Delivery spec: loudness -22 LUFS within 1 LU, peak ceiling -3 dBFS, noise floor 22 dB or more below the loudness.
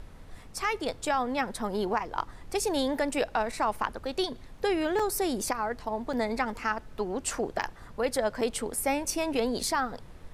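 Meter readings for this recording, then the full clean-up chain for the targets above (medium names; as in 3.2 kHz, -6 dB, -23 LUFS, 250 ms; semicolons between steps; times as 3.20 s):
dropouts 5; longest dropout 4.4 ms; noise floor -48 dBFS; noise floor target -53 dBFS; loudness -30.5 LUFS; peak level -13.0 dBFS; loudness target -22.0 LUFS
-> interpolate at 4.99/6.13/7.62/8.41/9.63 s, 4.4 ms; noise print and reduce 6 dB; trim +8.5 dB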